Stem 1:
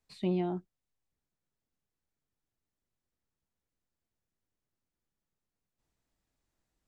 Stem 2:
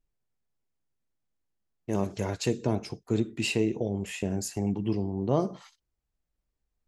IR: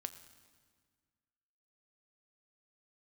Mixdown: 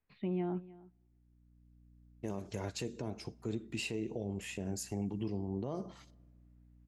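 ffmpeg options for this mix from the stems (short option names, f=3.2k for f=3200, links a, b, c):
-filter_complex "[0:a]lowpass=f=2.6k:w=0.5412,lowpass=f=2.6k:w=1.3066,equalizer=f=680:t=o:w=1.2:g=-3.5,volume=-1.5dB,asplit=4[a][b][c][d];[b]volume=-19.5dB[e];[c]volume=-21dB[f];[1:a]aeval=exprs='val(0)+0.002*(sin(2*PI*60*n/s)+sin(2*PI*2*60*n/s)/2+sin(2*PI*3*60*n/s)/3+sin(2*PI*4*60*n/s)/4+sin(2*PI*5*60*n/s)/5)':c=same,adelay=350,volume=-7dB,asplit=2[g][h];[h]volume=-15dB[i];[d]apad=whole_len=318664[j];[g][j]sidechaincompress=threshold=-48dB:ratio=8:attack=16:release=1100[k];[2:a]atrim=start_sample=2205[l];[e][i]amix=inputs=2:normalize=0[m];[m][l]afir=irnorm=-1:irlink=0[n];[f]aecho=0:1:307:1[o];[a][k][n][o]amix=inputs=4:normalize=0,alimiter=level_in=4dB:limit=-24dB:level=0:latency=1:release=144,volume=-4dB"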